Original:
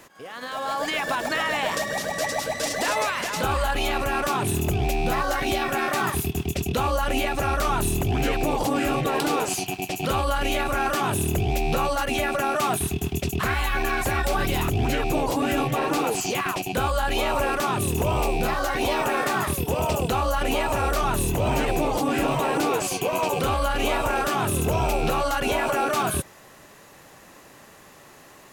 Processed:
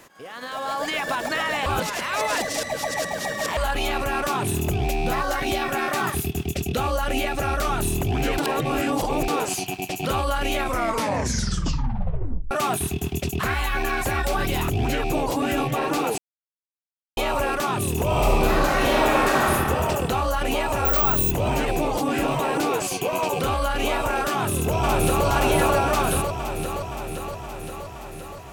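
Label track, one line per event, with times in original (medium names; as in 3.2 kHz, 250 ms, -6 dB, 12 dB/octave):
1.660000	3.570000	reverse
6.080000	7.830000	band-stop 1 kHz, Q 6.1
8.380000	9.280000	reverse
10.560000	10.560000	tape stop 1.95 s
16.180000	17.170000	mute
18.060000	19.520000	reverb throw, RT60 2.3 s, DRR -3 dB
20.850000	21.310000	careless resampling rate divided by 2×, down filtered, up zero stuff
24.310000	25.260000	echo throw 520 ms, feedback 70%, level -0.5 dB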